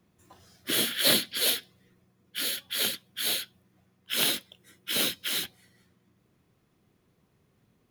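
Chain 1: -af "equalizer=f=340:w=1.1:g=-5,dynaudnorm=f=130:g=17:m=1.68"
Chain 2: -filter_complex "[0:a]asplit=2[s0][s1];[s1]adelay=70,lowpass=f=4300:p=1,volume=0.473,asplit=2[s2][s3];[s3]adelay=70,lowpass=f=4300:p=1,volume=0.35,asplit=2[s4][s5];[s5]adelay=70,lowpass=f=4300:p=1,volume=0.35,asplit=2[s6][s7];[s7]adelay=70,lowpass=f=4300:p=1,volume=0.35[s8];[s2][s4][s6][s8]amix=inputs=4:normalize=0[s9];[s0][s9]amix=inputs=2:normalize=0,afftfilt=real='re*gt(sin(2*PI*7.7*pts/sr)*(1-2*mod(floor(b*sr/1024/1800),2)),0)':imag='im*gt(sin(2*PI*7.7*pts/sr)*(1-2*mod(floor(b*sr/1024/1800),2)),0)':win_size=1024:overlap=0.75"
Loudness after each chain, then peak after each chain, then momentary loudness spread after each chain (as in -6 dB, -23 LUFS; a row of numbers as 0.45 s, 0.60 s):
-24.0 LUFS, -29.5 LUFS; -4.5 dBFS, -11.5 dBFS; 13 LU, 19 LU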